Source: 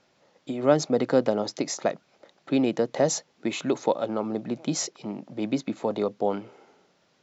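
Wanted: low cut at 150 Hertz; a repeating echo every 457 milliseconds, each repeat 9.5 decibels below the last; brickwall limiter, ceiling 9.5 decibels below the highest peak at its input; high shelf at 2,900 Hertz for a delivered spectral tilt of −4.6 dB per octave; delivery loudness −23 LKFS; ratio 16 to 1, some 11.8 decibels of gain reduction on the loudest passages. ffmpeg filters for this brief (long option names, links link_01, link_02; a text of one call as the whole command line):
ffmpeg -i in.wav -af "highpass=150,highshelf=frequency=2900:gain=-8,acompressor=threshold=-27dB:ratio=16,alimiter=level_in=1dB:limit=-24dB:level=0:latency=1,volume=-1dB,aecho=1:1:457|914|1371|1828:0.335|0.111|0.0365|0.012,volume=13.5dB" out.wav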